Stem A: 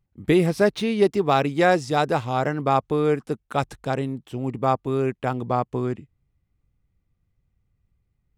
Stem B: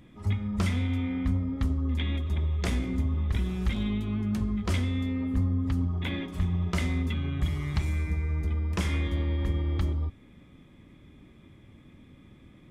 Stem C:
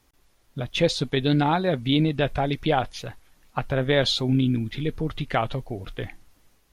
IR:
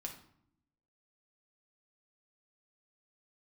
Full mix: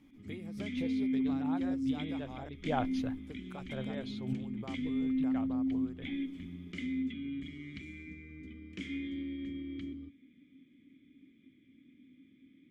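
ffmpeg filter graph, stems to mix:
-filter_complex "[0:a]acompressor=threshold=-28dB:ratio=6,volume=-17dB,asplit=3[link_01][link_02][link_03];[link_01]atrim=end=2.49,asetpts=PTS-STARTPTS,afade=type=out:start_time=2.486:duration=0.004:curve=hsin[link_04];[link_02]atrim=start=2.49:end=3.17,asetpts=PTS-STARTPTS,volume=0[link_05];[link_03]atrim=start=3.17,asetpts=PTS-STARTPTS,afade=type=in:duration=0.004:curve=hsin[link_06];[link_04][link_05][link_06]concat=n=3:v=0:a=1,asplit=2[link_07][link_08];[1:a]asplit=3[link_09][link_10][link_11];[link_09]bandpass=frequency=270:width_type=q:width=8,volume=0dB[link_12];[link_10]bandpass=frequency=2290:width_type=q:width=8,volume=-6dB[link_13];[link_11]bandpass=frequency=3010:width_type=q:width=8,volume=-9dB[link_14];[link_12][link_13][link_14]amix=inputs=3:normalize=0,equalizer=frequency=7200:width_type=o:width=0.58:gain=7,volume=1.5dB[link_15];[2:a]highshelf=frequency=3200:gain=-10,volume=-6.5dB[link_16];[link_08]apad=whole_len=296424[link_17];[link_16][link_17]sidechaincompress=threshold=-60dB:ratio=12:attack=16:release=327[link_18];[link_07][link_15][link_18]amix=inputs=3:normalize=0"

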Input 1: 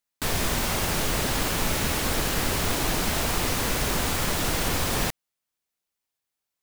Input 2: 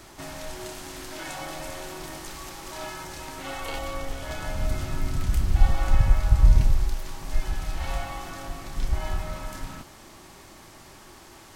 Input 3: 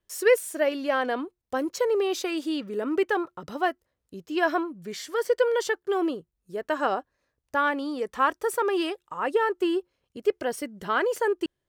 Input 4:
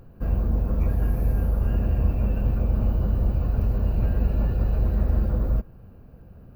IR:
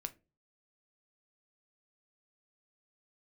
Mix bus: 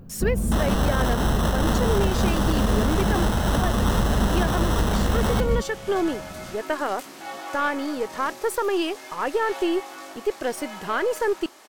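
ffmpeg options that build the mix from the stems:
-filter_complex "[0:a]bass=frequency=250:gain=-7,treble=frequency=4000:gain=-8,acrusher=samples=19:mix=1:aa=0.000001,adelay=300,volume=0dB[link_01];[1:a]highpass=frequency=300:width=0.5412,highpass=frequency=300:width=1.3066,flanger=delay=18:depth=6.2:speed=0.37,adelay=1650,volume=-3dB[link_02];[2:a]aeval=exprs='if(lt(val(0),0),0.708*val(0),val(0))':channel_layout=same,alimiter=limit=-17.5dB:level=0:latency=1:release=93,volume=-2dB[link_03];[3:a]equalizer=frequency=200:width=1.4:gain=11,volume=-5.5dB[link_04];[link_01][link_02][link_03][link_04]amix=inputs=4:normalize=0,acontrast=37,alimiter=limit=-11.5dB:level=0:latency=1:release=366"

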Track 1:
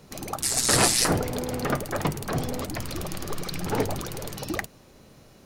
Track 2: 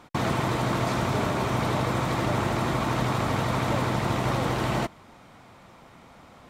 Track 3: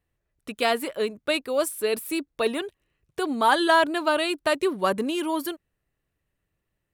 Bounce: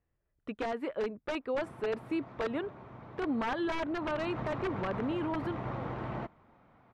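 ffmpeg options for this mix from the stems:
ffmpeg -i stem1.wav -i stem2.wav -i stem3.wav -filter_complex "[1:a]adelay=1400,volume=-11dB,afade=type=in:start_time=3.95:duration=0.31:silence=0.251189[link_01];[2:a]alimiter=limit=-15dB:level=0:latency=1:release=231,aeval=exprs='(mod(7.5*val(0)+1,2)-1)/7.5':channel_layout=same,volume=-2.5dB[link_02];[link_01][link_02]amix=inputs=2:normalize=0,lowpass=1800,alimiter=level_in=1.5dB:limit=-24dB:level=0:latency=1:release=54,volume=-1.5dB" out.wav

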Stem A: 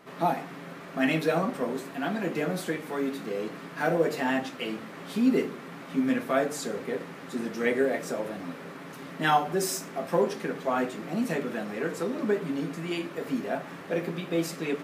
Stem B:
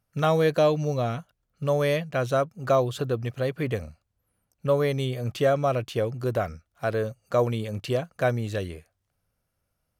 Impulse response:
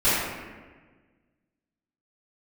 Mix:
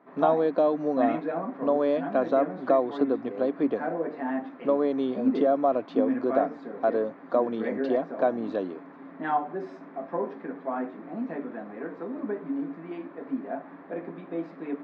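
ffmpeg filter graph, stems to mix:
-filter_complex "[0:a]highshelf=frequency=2100:gain=-9.5,volume=-7dB[link_01];[1:a]highpass=frequency=200:width=0.5412,highpass=frequency=200:width=1.3066,equalizer=frequency=2000:width_type=o:width=0.98:gain=-14,acompressor=threshold=-25dB:ratio=3,volume=1.5dB[link_02];[link_01][link_02]amix=inputs=2:normalize=0,highpass=120,equalizer=frequency=140:width_type=q:width=4:gain=-10,equalizer=frequency=280:width_type=q:width=4:gain=9,equalizer=frequency=700:width_type=q:width=4:gain=6,equalizer=frequency=1000:width_type=q:width=4:gain=6,equalizer=frequency=1700:width_type=q:width=4:gain=3,equalizer=frequency=2900:width_type=q:width=4:gain=-9,lowpass=frequency=3300:width=0.5412,lowpass=frequency=3300:width=1.3066"

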